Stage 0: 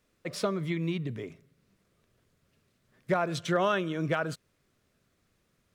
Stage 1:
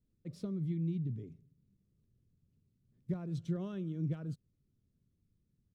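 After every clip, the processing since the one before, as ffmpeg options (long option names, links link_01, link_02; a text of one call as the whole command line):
ffmpeg -i in.wav -af "firequalizer=gain_entry='entry(130,0);entry(640,-25);entry(1600,-29);entry(3900,-21)':delay=0.05:min_phase=1" out.wav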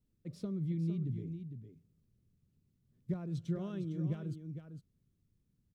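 ffmpeg -i in.wav -af "aecho=1:1:456:0.355" out.wav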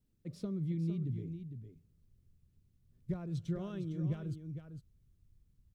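ffmpeg -i in.wav -af "asubboost=boost=5.5:cutoff=84,volume=1dB" out.wav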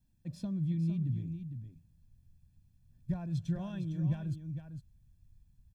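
ffmpeg -i in.wav -af "aecho=1:1:1.2:0.82" out.wav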